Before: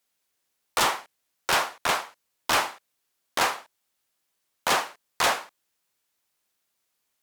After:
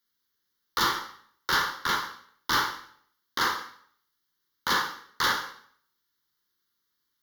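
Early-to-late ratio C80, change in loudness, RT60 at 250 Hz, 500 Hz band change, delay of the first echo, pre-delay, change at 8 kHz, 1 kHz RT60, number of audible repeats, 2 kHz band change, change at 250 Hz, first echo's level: 11.5 dB, −1.5 dB, 0.60 s, −8.5 dB, no echo audible, 12 ms, −6.0 dB, 0.60 s, no echo audible, −0.5 dB, 0.0 dB, no echo audible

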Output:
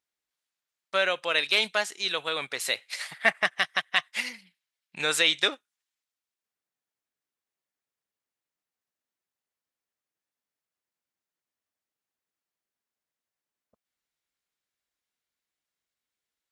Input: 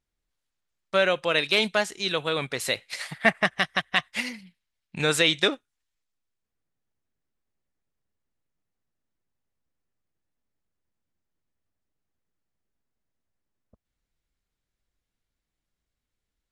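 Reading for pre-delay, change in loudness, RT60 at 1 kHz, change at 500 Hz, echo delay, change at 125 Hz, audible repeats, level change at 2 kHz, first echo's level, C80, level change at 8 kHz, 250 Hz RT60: no reverb audible, −1.5 dB, no reverb audible, −5.5 dB, no echo audible, −14.5 dB, no echo audible, −1.0 dB, no echo audible, no reverb audible, 0.0 dB, no reverb audible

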